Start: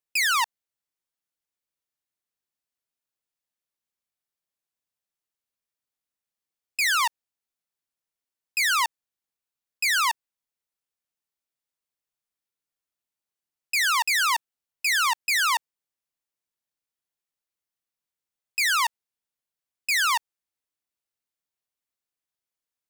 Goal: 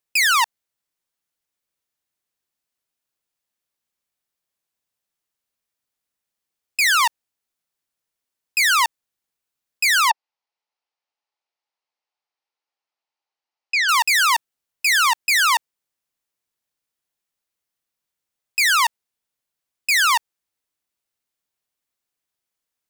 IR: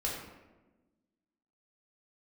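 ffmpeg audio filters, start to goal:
-filter_complex "[0:a]asettb=1/sr,asplit=3[a][b][c];[a]atrim=end=10.104[d];[b]atrim=start=10.1:end=13.89,asetpts=PTS-STARTPTS,afade=t=in:d=0.004:c=qsin,afade=t=out:st=3.786:d=0.004:c=qsin,highpass=470,equalizer=f=840:t=q:w=4:g=8,equalizer=f=1.6k:t=q:w=4:g=-4,equalizer=f=3.5k:t=q:w=4:g=-4,lowpass=f=5.1k:w=0.5412,lowpass=f=5.1k:w=1.3066[e];[c]atrim=start=13.886[f];[d][e]acrossfade=d=0.004:c1=hsin:c2=qsin[g];[g][f]acrossfade=d=0.004:c1=qsin:c2=hsin,acontrast=47"

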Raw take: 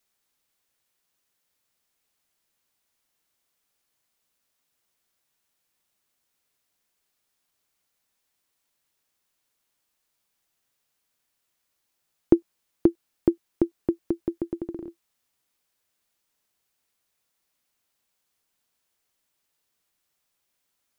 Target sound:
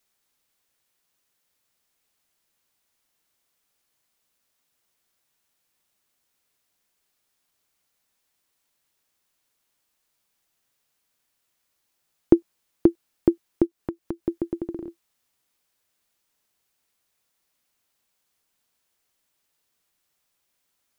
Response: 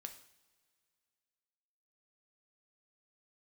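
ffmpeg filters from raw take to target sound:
-filter_complex "[0:a]asplit=3[a][b][c];[a]afade=t=out:st=13.65:d=0.02[d];[b]acompressor=threshold=-29dB:ratio=6,afade=t=in:st=13.65:d=0.02,afade=t=out:st=14.23:d=0.02[e];[c]afade=t=in:st=14.23:d=0.02[f];[d][e][f]amix=inputs=3:normalize=0,volume=2dB"

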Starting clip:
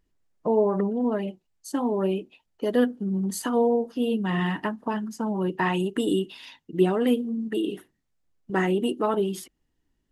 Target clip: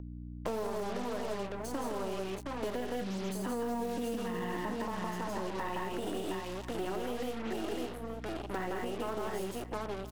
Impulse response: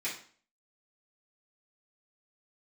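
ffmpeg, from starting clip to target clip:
-filter_complex "[0:a]aeval=exprs='if(lt(val(0),0),0.251*val(0),val(0))':c=same,asettb=1/sr,asplit=3[a][b][c];[a]atrim=end=2.914[d];[b]atrim=start=2.91:end=4.81,asetpts=PTS-STARTPTS,afade=t=in:d=0.004:c=qsin,afade=t=out:st=1.896:d=0.004:c=qsin,equalizer=f=240:w=0.76:g=9.5[e];[c]atrim=start=4.806[f];[d][e]acrossfade=d=0.004:c1=hsin:c2=qsin[g];[g][f]acrossfade=d=0.004:c1=qsin:c2=hsin,asplit=2[h][i];[i]aecho=0:1:58|164|195|717:0.282|0.708|0.376|0.398[j];[h][j]amix=inputs=2:normalize=0,acrusher=bits=5:mix=0:aa=0.5,alimiter=limit=-18dB:level=0:latency=1:release=123,asplit=2[k][l];[l]aecho=0:1:851:0.075[m];[k][m]amix=inputs=2:normalize=0,aeval=exprs='val(0)+0.0126*(sin(2*PI*60*n/s)+sin(2*PI*2*60*n/s)/2+sin(2*PI*3*60*n/s)/3+sin(2*PI*4*60*n/s)/4+sin(2*PI*5*60*n/s)/5)':c=same,acrossover=split=400|1100[n][o][p];[n]acompressor=threshold=-38dB:ratio=4[q];[o]acompressor=threshold=-42dB:ratio=4[r];[p]acompressor=threshold=-53dB:ratio=4[s];[q][r][s]amix=inputs=3:normalize=0,lowshelf=f=310:g=-9,volume=5.5dB"

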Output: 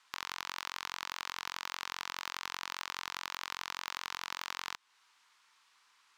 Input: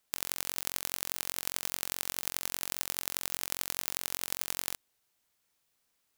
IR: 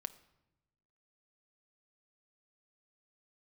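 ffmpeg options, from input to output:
-af "highpass=380,lowpass=5k,acompressor=threshold=-49dB:ratio=2,asoftclip=type=tanh:threshold=-34.5dB,lowshelf=f=790:t=q:w=3:g=-8.5,volume=13.5dB"

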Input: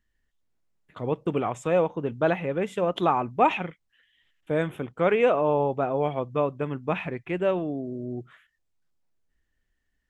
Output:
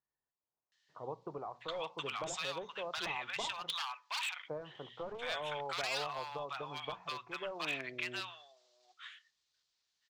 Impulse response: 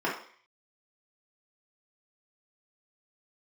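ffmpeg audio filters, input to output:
-filter_complex "[0:a]lowpass=f=6.1k:w=0.5412,lowpass=f=6.1k:w=1.3066,aderivative,aeval=exprs='0.0133*(abs(mod(val(0)/0.0133+3,4)-2)-1)':c=same,equalizer=f=125:t=o:w=1:g=9,equalizer=f=250:t=o:w=1:g=-5,equalizer=f=1k:t=o:w=1:g=7,equalizer=f=4k:t=o:w=1:g=9,acompressor=threshold=-48dB:ratio=4,bandreject=f=60:t=h:w=6,bandreject=f=120:t=h:w=6,bandreject=f=180:t=h:w=6,bandreject=f=240:t=h:w=6,acrossover=split=950[a][b];[b]adelay=720[c];[a][c]amix=inputs=2:normalize=0,asplit=2[d][e];[1:a]atrim=start_sample=2205[f];[e][f]afir=irnorm=-1:irlink=0,volume=-30dB[g];[d][g]amix=inputs=2:normalize=0,volume=12dB"

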